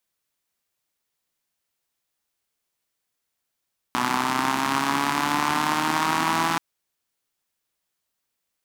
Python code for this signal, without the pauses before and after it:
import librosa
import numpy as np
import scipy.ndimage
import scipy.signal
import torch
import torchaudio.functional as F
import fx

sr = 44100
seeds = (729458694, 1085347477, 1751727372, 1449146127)

y = fx.engine_four_rev(sr, seeds[0], length_s=2.63, rpm=3700, resonances_hz=(270.0, 950.0), end_rpm=5000)